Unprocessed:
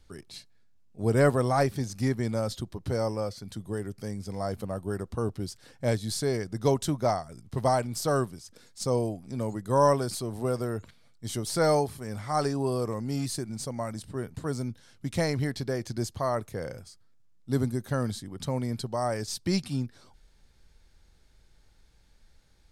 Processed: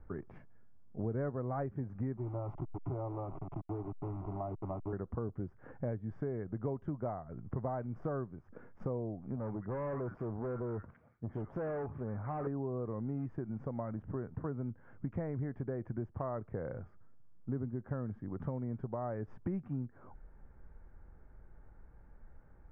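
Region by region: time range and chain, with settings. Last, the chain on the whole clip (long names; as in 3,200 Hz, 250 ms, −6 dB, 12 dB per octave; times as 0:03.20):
0:02.17–0:04.93: hold until the input has moved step −35 dBFS + phaser with its sweep stopped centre 330 Hz, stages 8
0:09.36–0:12.47: multiband delay without the direct sound lows, highs 60 ms, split 1,400 Hz + tube saturation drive 32 dB, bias 0.3
whole clip: inverse Chebyshev low-pass filter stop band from 3,800 Hz, stop band 50 dB; dynamic equaliser 960 Hz, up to −5 dB, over −37 dBFS, Q 0.8; downward compressor 4 to 1, threshold −42 dBFS; level +5 dB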